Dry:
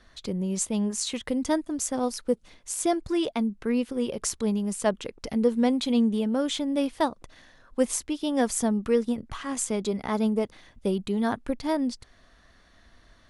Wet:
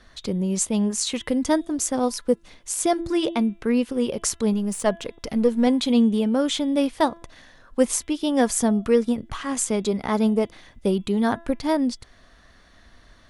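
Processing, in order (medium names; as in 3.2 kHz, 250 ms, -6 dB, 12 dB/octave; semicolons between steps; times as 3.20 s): 4.53–5.67 s: partial rectifier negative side -3 dB; de-hum 336.8 Hz, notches 11; trim +4.5 dB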